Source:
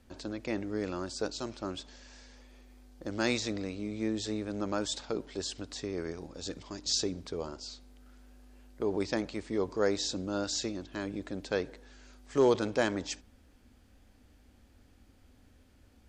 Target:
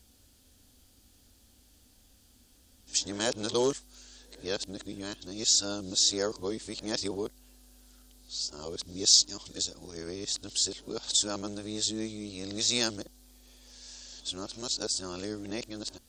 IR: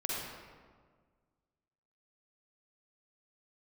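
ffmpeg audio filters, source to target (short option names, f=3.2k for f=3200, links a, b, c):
-af "areverse,aexciter=amount=4.8:drive=4.7:freq=3.1k,volume=-3dB"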